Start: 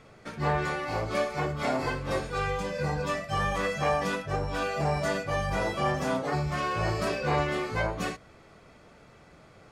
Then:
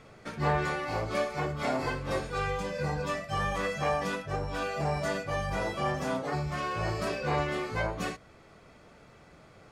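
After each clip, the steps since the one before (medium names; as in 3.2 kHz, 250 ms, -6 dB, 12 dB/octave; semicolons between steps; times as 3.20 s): gain riding within 5 dB 2 s; trim -2.5 dB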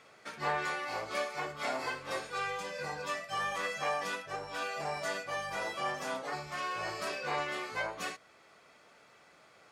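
high-pass 1 kHz 6 dB/octave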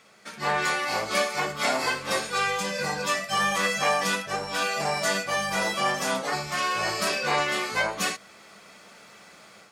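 treble shelf 3.5 kHz +8.5 dB; level rider gain up to 8.5 dB; peaking EQ 200 Hz +12.5 dB 0.26 oct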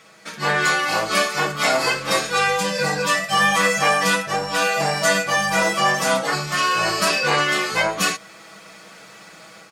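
comb 6.2 ms, depth 56%; trim +5.5 dB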